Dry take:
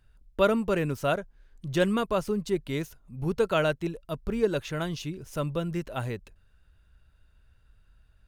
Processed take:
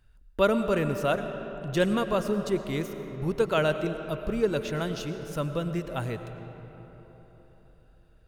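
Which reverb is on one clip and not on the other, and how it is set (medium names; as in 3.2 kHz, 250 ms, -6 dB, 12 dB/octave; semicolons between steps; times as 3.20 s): algorithmic reverb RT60 4.2 s, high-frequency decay 0.5×, pre-delay 65 ms, DRR 8.5 dB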